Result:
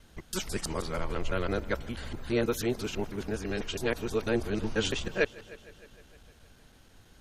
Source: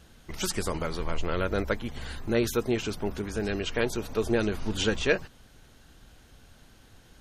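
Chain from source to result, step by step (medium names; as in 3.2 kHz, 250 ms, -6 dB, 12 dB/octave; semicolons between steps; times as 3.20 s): time reversed locally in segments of 164 ms; multi-head delay 154 ms, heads first and second, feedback 58%, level -23.5 dB; trim -2.5 dB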